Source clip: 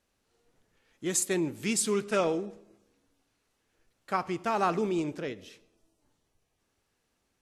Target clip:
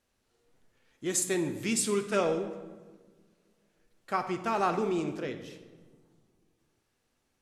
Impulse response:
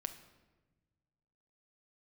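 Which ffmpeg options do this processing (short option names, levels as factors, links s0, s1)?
-filter_complex "[1:a]atrim=start_sample=2205,asetrate=34839,aresample=44100[s0];[0:a][s0]afir=irnorm=-1:irlink=0"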